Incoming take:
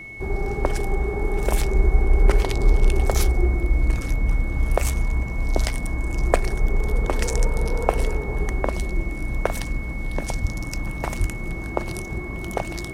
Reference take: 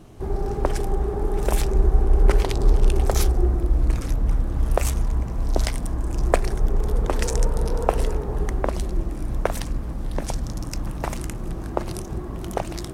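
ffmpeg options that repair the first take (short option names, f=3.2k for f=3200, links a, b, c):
-filter_complex "[0:a]bandreject=f=2.2k:w=30,asplit=3[a][b][c];[a]afade=t=out:st=10.41:d=0.02[d];[b]highpass=f=140:w=0.5412,highpass=f=140:w=1.3066,afade=t=in:st=10.41:d=0.02,afade=t=out:st=10.53:d=0.02[e];[c]afade=t=in:st=10.53:d=0.02[f];[d][e][f]amix=inputs=3:normalize=0,asplit=3[g][h][i];[g]afade=t=out:st=11.19:d=0.02[j];[h]highpass=f=140:w=0.5412,highpass=f=140:w=1.3066,afade=t=in:st=11.19:d=0.02,afade=t=out:st=11.31:d=0.02[k];[i]afade=t=in:st=11.31:d=0.02[l];[j][k][l]amix=inputs=3:normalize=0"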